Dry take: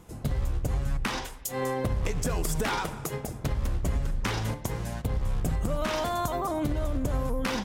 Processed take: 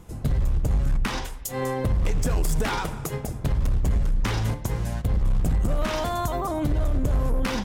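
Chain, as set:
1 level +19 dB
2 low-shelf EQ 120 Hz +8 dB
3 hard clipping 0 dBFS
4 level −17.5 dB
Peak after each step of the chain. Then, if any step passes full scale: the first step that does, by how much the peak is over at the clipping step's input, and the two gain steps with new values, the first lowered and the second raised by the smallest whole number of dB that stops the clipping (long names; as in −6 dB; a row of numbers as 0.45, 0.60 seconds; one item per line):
+6.5, +8.0, 0.0, −17.5 dBFS
step 1, 8.0 dB
step 1 +11 dB, step 4 −9.5 dB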